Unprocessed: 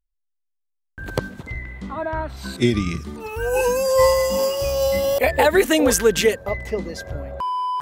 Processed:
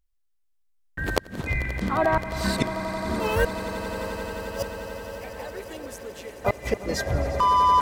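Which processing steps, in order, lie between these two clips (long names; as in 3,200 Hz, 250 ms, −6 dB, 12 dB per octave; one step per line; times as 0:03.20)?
gate with flip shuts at −15 dBFS, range −28 dB
pitch vibrato 8.8 Hz 6.6 cents
pitch-shifted copies added +3 semitones −8 dB
on a send: echo that builds up and dies away 88 ms, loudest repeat 8, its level −16 dB
on the sum: level +4 dB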